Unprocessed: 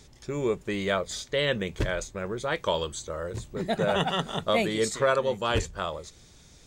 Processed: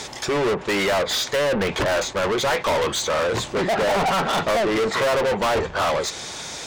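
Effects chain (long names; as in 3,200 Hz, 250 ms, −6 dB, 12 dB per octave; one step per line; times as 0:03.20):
treble cut that deepens with the level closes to 1,000 Hz, closed at −21.5 dBFS
parametric band 870 Hz +6 dB 1.4 octaves
notch filter 1,200 Hz, Q 26
mid-hump overdrive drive 37 dB, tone 7,000 Hz, clips at −8.5 dBFS
level that may rise only so fast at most 490 dB per second
level −5.5 dB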